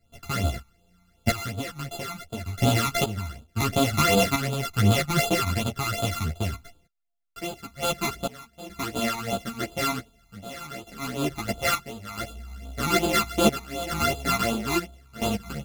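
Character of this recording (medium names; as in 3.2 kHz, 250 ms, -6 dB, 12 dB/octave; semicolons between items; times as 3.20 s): a buzz of ramps at a fixed pitch in blocks of 64 samples; phasing stages 12, 2.7 Hz, lowest notch 520–1900 Hz; random-step tremolo 2.3 Hz, depth 90%; a shimmering, thickened sound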